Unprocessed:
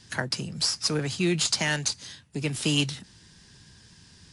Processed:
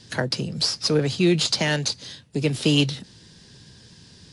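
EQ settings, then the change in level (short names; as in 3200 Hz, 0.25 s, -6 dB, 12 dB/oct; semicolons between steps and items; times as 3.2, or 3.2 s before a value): dynamic EQ 8200 Hz, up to -5 dB, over -42 dBFS, Q 1.2; graphic EQ 125/250/500/4000 Hz +5/+4/+9/+6 dB; 0.0 dB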